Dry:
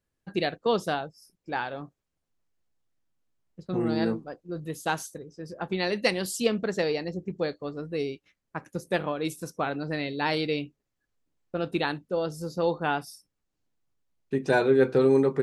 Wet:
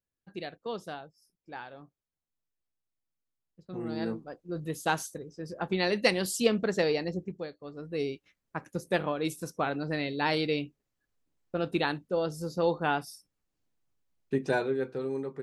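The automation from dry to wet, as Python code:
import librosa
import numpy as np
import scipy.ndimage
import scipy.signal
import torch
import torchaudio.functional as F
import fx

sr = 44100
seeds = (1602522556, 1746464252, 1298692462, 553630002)

y = fx.gain(x, sr, db=fx.line((3.62, -11.5), (4.6, 0.0), (7.18, 0.0), (7.51, -12.0), (8.04, -1.0), (14.35, -1.0), (14.9, -13.0)))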